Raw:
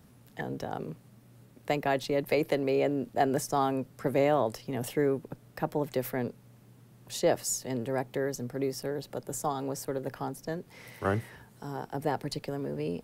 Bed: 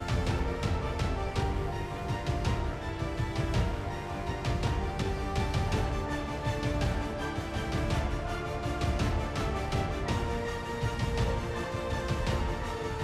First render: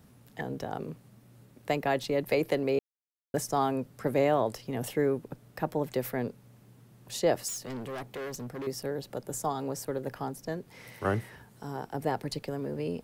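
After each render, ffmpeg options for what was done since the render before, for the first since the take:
-filter_complex "[0:a]asettb=1/sr,asplit=3[a][b][c];[a]atrim=end=7.484[d];[b]atrim=start=7.48:end=8.67,asetpts=PTS-STARTPTS,afade=t=in:d=0.004:c=qsin,afade=t=out:st=1.186:d=0.004:c=qsin,asoftclip=type=hard:threshold=-34.5dB[e];[c]atrim=start=8.666[f];[d][e]acrossfade=d=0.004:c1=hsin:c2=qsin[g];[g][f]acrossfade=d=0.004:c1=qsin:c2=hsin,asplit=3[h][i][j];[h]atrim=end=2.79,asetpts=PTS-STARTPTS,afade=t=out:st=2.786:d=0.004:c=hsin[k];[i]atrim=start=2.79:end=3.34,asetpts=PTS-STARTPTS,volume=0[l];[j]atrim=start=3.34,asetpts=PTS-STARTPTS,afade=t=in:d=0.004:c=hsin[m];[k][l][m]concat=n=3:v=0:a=1"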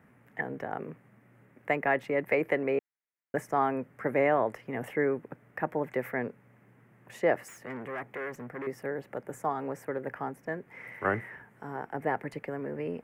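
-af "highpass=f=210:p=1,highshelf=f=2.9k:t=q:w=3:g=-13"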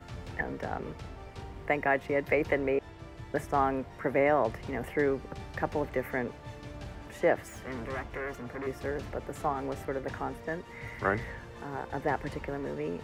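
-filter_complex "[1:a]volume=-13dB[a];[0:a][a]amix=inputs=2:normalize=0"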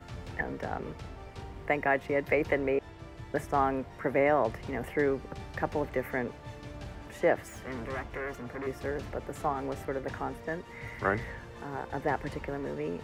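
-af anull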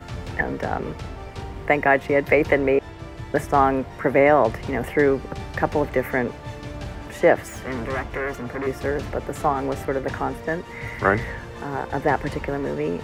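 -af "volume=9.5dB"

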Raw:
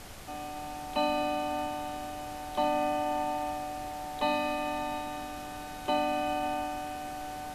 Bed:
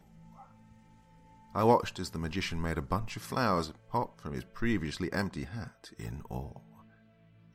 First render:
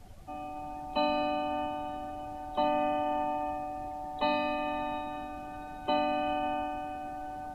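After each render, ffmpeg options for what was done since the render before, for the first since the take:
-af "afftdn=nr=16:nf=-41"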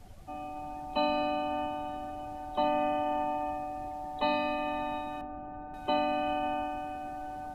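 -filter_complex "[0:a]asettb=1/sr,asplit=3[a][b][c];[a]atrim=end=5.214[d];[b]atrim=start=5.21:end=5.74,asetpts=PTS-STARTPTS,afade=t=in:d=0.004:c=qsin,afade=t=out:st=0.526:d=0.004:c=qsin,lowpass=1.2k[e];[c]atrim=start=5.736[f];[d][e]acrossfade=d=0.004:c1=hsin:c2=qsin[g];[g][f]acrossfade=d=0.004:c1=qsin:c2=hsin"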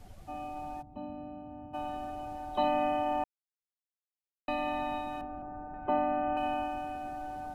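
-filter_complex "[0:a]asplit=3[a][b][c];[a]afade=t=out:st=0.81:d=0.02[d];[b]bandpass=f=110:t=q:w=1,afade=t=in:st=0.81:d=0.02,afade=t=out:st=1.73:d=0.02[e];[c]afade=t=in:st=1.73:d=0.02[f];[d][e][f]amix=inputs=3:normalize=0,asettb=1/sr,asplit=3[g][h][i];[g]atrim=end=5.424[j];[h]atrim=start=5.42:end=6.37,asetpts=PTS-STARTPTS,afade=t=in:d=0.004:c=qsin,afade=t=out:st=0.946:d=0.004:c=qsin,lowpass=f=1.9k:w=0.5412,lowpass=f=1.9k:w=1.3066[k];[i]atrim=start=6.366[l];[j][k]acrossfade=d=0.004:c1=hsin:c2=qsin[m];[m][l]acrossfade=d=0.004:c1=qsin:c2=hsin,asplit=3[n][o][p];[n]atrim=end=3.24,asetpts=PTS-STARTPTS,afade=t=out:st=3.236:d=0.004:c=hsin[q];[o]atrim=start=3.24:end=4.48,asetpts=PTS-STARTPTS,volume=0[r];[p]atrim=start=4.48,asetpts=PTS-STARTPTS,afade=t=in:d=0.004:c=hsin[s];[q][r][s]concat=n=3:v=0:a=1"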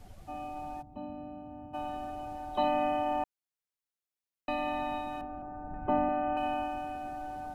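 -filter_complex "[0:a]asettb=1/sr,asplit=3[a][b][c];[a]atrim=end=5.644[d];[b]atrim=start=5.64:end=6.09,asetpts=PTS-STARTPTS,afade=t=in:d=0.004:c=qsin,afade=t=out:st=0.446:d=0.004:c=qsin,bass=f=250:g=8,treble=f=4k:g=-10[e];[c]atrim=start=6.086[f];[d][e]acrossfade=d=0.004:c1=hsin:c2=qsin[g];[g][f]acrossfade=d=0.004:c1=qsin:c2=hsin"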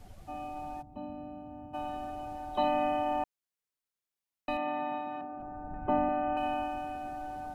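-filter_complex "[0:a]asettb=1/sr,asplit=3[a][b][c];[a]atrim=end=4.574[d];[b]atrim=start=4.57:end=5.4,asetpts=PTS-STARTPTS,afade=t=in:d=0.004:c=qsin,afade=t=out:st=0.826:d=0.004:c=qsin,highpass=170,lowpass=2.4k[e];[c]atrim=start=5.396[f];[d][e]acrossfade=d=0.004:c1=hsin:c2=qsin[g];[g][f]acrossfade=d=0.004:c1=qsin:c2=hsin"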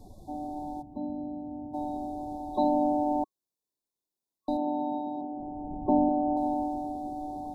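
-af "afftfilt=real='re*(1-between(b*sr/4096,1100,3400))':imag='im*(1-between(b*sr/4096,1100,3400))':win_size=4096:overlap=0.75,equalizer=f=310:w=1.2:g=9.5"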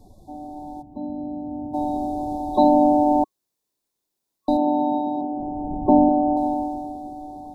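-af "dynaudnorm=f=200:g=13:m=10dB"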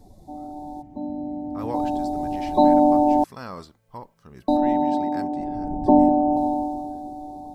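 -filter_complex "[1:a]volume=-7.5dB[a];[0:a][a]amix=inputs=2:normalize=0"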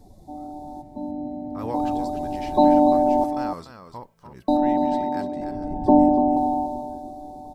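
-af "aecho=1:1:293:0.376"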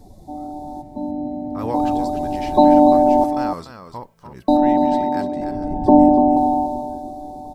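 -af "volume=5dB,alimiter=limit=-2dB:level=0:latency=1"

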